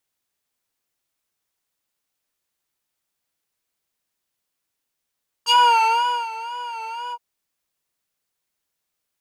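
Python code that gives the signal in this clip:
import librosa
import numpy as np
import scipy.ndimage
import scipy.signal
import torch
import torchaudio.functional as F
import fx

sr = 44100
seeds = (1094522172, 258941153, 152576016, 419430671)

y = fx.sub_patch_vibrato(sr, seeds[0], note=82, wave='square', wave2='square', interval_st=-12, detune_cents=16, level2_db=-12, sub_db=-15.0, noise_db=-16.0, kind='bandpass', cutoff_hz=520.0, q=1.8, env_oct=3.5, env_decay_s=0.09, env_sustain_pct=45, attack_ms=42.0, decay_s=0.8, sustain_db=-17.5, release_s=0.06, note_s=1.66, lfo_hz=2.0, vibrato_cents=79)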